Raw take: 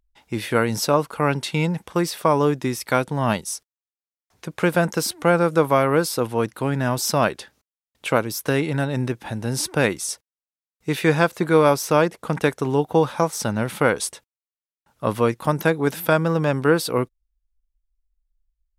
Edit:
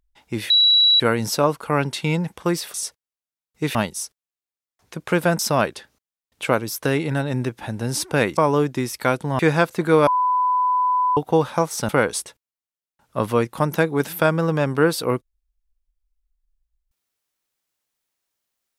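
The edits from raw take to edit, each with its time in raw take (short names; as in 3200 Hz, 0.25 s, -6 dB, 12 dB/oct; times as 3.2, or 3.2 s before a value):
0.5 add tone 3910 Hz -11.5 dBFS 0.50 s
2.24–3.26 swap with 10–11.01
4.9–7.02 cut
11.69–12.79 bleep 1000 Hz -16 dBFS
13.51–13.76 cut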